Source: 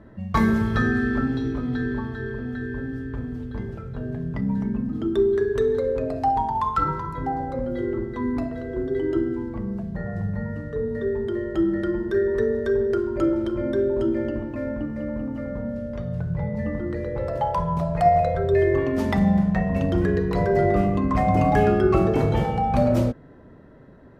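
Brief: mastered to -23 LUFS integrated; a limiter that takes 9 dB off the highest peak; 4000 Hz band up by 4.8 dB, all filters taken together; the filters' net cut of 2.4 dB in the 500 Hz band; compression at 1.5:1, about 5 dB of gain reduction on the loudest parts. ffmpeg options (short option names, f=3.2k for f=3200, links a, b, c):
-af "equalizer=f=500:t=o:g=-3.5,equalizer=f=4k:t=o:g=6,acompressor=threshold=-29dB:ratio=1.5,volume=7.5dB,alimiter=limit=-13.5dB:level=0:latency=1"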